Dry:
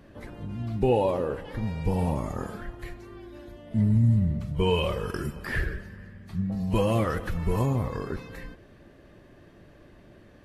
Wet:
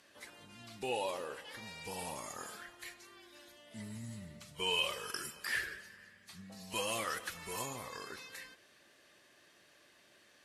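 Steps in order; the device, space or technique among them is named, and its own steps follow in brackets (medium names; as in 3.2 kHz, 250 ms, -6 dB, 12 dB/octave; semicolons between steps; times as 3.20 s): piezo pickup straight into a mixer (low-pass 8.9 kHz 12 dB/octave; differentiator); trim +8.5 dB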